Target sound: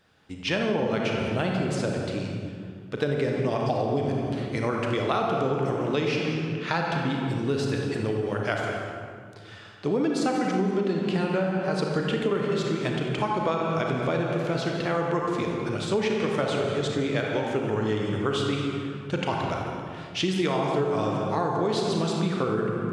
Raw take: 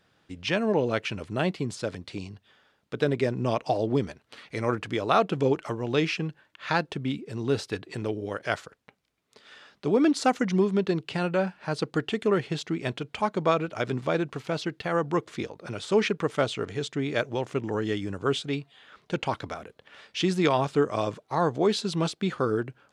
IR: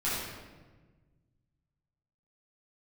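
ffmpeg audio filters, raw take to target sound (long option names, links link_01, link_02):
-filter_complex "[0:a]asplit=2[link_01][link_02];[1:a]atrim=start_sample=2205,asetrate=25578,aresample=44100,adelay=35[link_03];[link_02][link_03]afir=irnorm=-1:irlink=0,volume=-12.5dB[link_04];[link_01][link_04]amix=inputs=2:normalize=0,acompressor=threshold=-23dB:ratio=6,volume=1.5dB"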